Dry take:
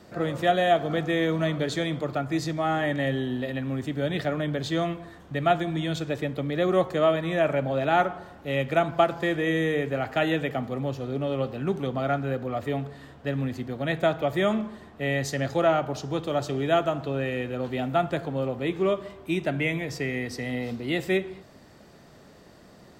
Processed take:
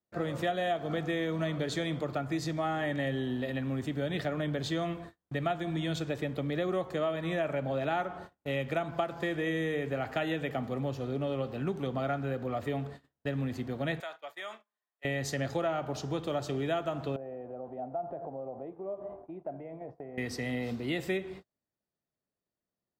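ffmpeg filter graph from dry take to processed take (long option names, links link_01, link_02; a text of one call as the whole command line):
ffmpeg -i in.wav -filter_complex "[0:a]asettb=1/sr,asplit=3[link_01][link_02][link_03];[link_01]atrim=end=14.004[link_04];[link_02]atrim=start=14:end=15.05,asetpts=PTS-STARTPTS,afade=type=in:duration=0.004:curve=qsin,afade=type=out:start_time=1.046:duration=0.004:curve=qsin,highpass=940,acompressor=threshold=-41dB:ratio=2:attack=3.2:release=140:knee=1:detection=peak[link_05];[link_03]atrim=start=15.046[link_06];[link_04][link_05]acrossfade=duration=0.004:curve1=hsin:curve2=qsin[link_07];[link_07][link_06]acrossfade=duration=0.004:curve1=qsin:curve2=hsin,asettb=1/sr,asplit=3[link_08][link_09][link_10];[link_08]atrim=end=17.164[link_11];[link_09]atrim=start=17.16:end=20.18,asetpts=PTS-STARTPTS,afade=type=in:duration=0.004:curve=qsin,afade=type=out:start_time=3.016:duration=0.004:curve=qsin,acompressor=threshold=-38dB:ratio=5:attack=3.2:release=140:knee=1:detection=peak,lowpass=frequency=720:width_type=q:width=3.5,equalizer=frequency=81:width_type=o:width=2.5:gain=-7[link_12];[link_10]atrim=start=20.176[link_13];[link_11][link_12]acrossfade=duration=0.004:curve1=hsin:curve2=qsin[link_14];[link_14][link_13]acrossfade=duration=0.004:curve1=qsin:curve2=hsin,agate=range=-39dB:threshold=-41dB:ratio=16:detection=peak,acompressor=threshold=-26dB:ratio=4,volume=-2.5dB" out.wav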